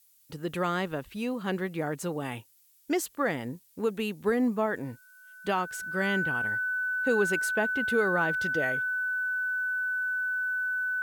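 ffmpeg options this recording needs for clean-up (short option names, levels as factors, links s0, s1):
-af "bandreject=f=1500:w=30,agate=range=0.0891:threshold=0.00355"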